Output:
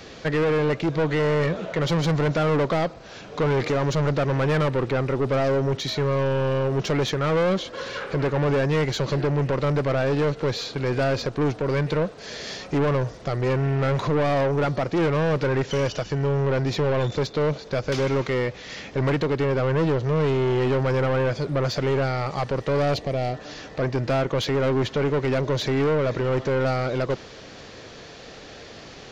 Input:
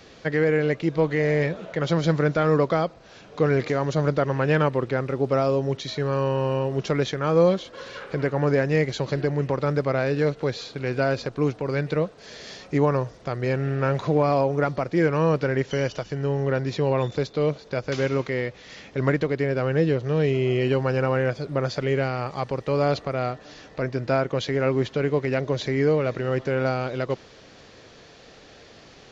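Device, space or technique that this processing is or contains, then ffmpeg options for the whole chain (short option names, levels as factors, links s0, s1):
saturation between pre-emphasis and de-emphasis: -filter_complex "[0:a]highshelf=f=5900:g=11.5,asoftclip=type=tanh:threshold=0.0562,highshelf=f=5900:g=-11.5,asettb=1/sr,asplit=3[s0][s1][s2];[s0]atrim=end=22.944[s3];[s1]atrim=start=22.94:end=23.34,asetpts=PTS-STARTPTS,afade=t=in:d=0.004:c=qsin,afade=t=out:st=0.396:d=0.004:c=qsin,equalizer=f=1300:t=o:w=0.47:g=-14.5[s4];[s2]atrim=start=23.336[s5];[s3][s4]acrossfade=d=0.004:c1=hsin:c2=qsin[s6];[s6][s5]acrossfade=d=0.004:c1=qsin:c2=hsin,volume=2.11"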